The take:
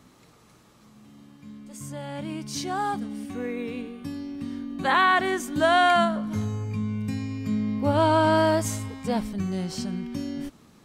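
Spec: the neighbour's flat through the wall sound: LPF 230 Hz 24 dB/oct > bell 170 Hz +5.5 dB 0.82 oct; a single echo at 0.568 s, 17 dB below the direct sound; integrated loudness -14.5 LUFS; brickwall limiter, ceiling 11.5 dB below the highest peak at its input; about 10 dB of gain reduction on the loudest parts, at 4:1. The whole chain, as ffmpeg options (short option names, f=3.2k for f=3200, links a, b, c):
-af "acompressor=threshold=-28dB:ratio=4,alimiter=level_in=5dB:limit=-24dB:level=0:latency=1,volume=-5dB,lowpass=f=230:w=0.5412,lowpass=f=230:w=1.3066,equalizer=f=170:t=o:w=0.82:g=5.5,aecho=1:1:568:0.141,volume=24dB"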